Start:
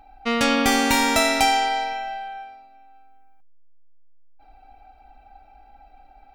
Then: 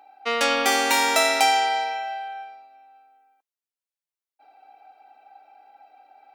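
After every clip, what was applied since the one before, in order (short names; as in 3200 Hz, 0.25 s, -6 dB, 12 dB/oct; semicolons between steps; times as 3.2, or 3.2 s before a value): HPF 360 Hz 24 dB/oct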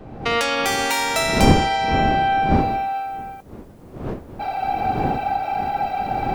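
one-sided fold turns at -10.5 dBFS; recorder AGC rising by 44 dB/s; wind noise 350 Hz -24 dBFS; gain -1.5 dB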